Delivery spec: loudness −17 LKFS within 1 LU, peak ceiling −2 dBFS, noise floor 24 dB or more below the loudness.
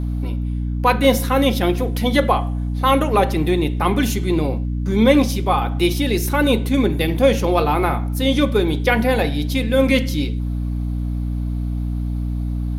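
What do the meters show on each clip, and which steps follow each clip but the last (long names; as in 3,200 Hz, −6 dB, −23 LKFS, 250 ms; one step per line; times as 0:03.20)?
mains hum 60 Hz; hum harmonics up to 300 Hz; level of the hum −20 dBFS; integrated loudness −19.0 LKFS; sample peak −2.0 dBFS; target loudness −17.0 LKFS
→ mains-hum notches 60/120/180/240/300 Hz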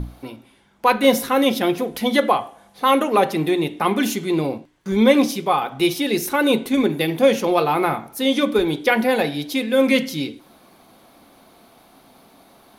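mains hum none found; integrated loudness −19.5 LKFS; sample peak −2.5 dBFS; target loudness −17.0 LKFS
→ level +2.5 dB
brickwall limiter −2 dBFS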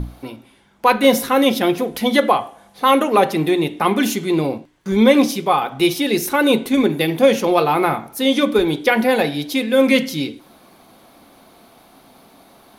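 integrated loudness −17.0 LKFS; sample peak −2.0 dBFS; background noise floor −50 dBFS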